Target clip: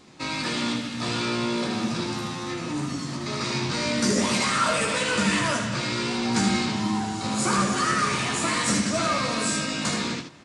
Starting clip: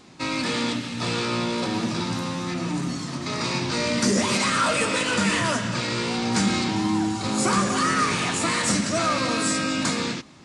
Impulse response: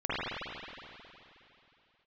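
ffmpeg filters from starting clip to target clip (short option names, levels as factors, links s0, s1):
-filter_complex "[0:a]aecho=1:1:14|77:0.501|0.531,asplit=2[s0][s1];[1:a]atrim=start_sample=2205[s2];[s1][s2]afir=irnorm=-1:irlink=0,volume=0.0211[s3];[s0][s3]amix=inputs=2:normalize=0,volume=0.708"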